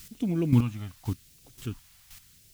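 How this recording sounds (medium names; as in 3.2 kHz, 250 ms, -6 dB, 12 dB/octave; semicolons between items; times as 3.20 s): a quantiser's noise floor 10-bit, dither triangular; phasing stages 2, 0.88 Hz, lowest notch 350–1100 Hz; chopped level 1.9 Hz, depth 65%, duty 15%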